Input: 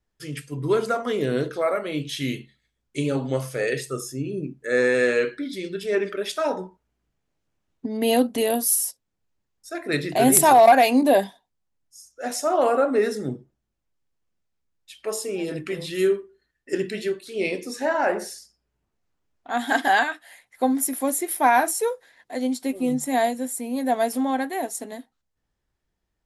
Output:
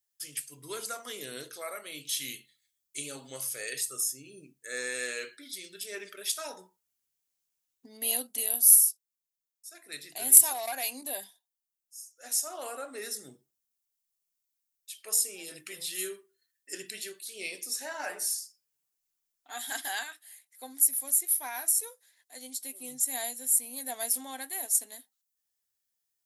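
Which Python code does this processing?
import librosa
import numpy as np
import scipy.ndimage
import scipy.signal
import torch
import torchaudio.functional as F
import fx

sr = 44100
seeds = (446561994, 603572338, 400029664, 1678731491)

y = fx.comb(x, sr, ms=6.7, depth=0.65, at=(17.99, 19.67))
y = fx.tilt_eq(y, sr, slope=3.0)
y = fx.rider(y, sr, range_db=4, speed_s=2.0)
y = F.preemphasis(torch.from_numpy(y), 0.8).numpy()
y = y * librosa.db_to_amplitude(-6.5)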